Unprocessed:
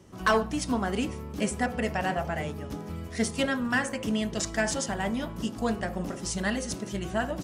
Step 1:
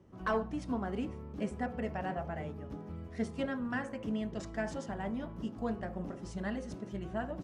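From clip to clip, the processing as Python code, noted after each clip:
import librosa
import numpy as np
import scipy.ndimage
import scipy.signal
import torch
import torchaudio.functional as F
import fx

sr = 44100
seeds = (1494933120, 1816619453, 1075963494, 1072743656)

y = fx.lowpass(x, sr, hz=1100.0, slope=6)
y = y * 10.0 ** (-6.5 / 20.0)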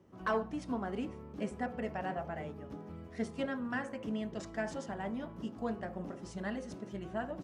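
y = fx.low_shelf(x, sr, hz=100.0, db=-10.5)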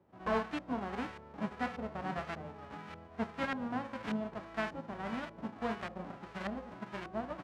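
y = fx.envelope_flatten(x, sr, power=0.1)
y = fx.filter_lfo_lowpass(y, sr, shape='saw_up', hz=1.7, low_hz=600.0, high_hz=1900.0, q=0.87)
y = y * 10.0 ** (4.5 / 20.0)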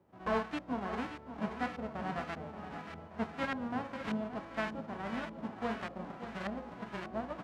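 y = fx.echo_feedback(x, sr, ms=577, feedback_pct=56, wet_db=-11)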